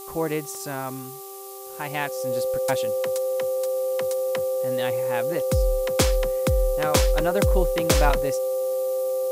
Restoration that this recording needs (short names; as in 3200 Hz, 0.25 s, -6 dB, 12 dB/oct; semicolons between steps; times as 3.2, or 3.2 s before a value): de-hum 391.5 Hz, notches 3; notch 520 Hz, Q 30; denoiser 30 dB, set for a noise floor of -36 dBFS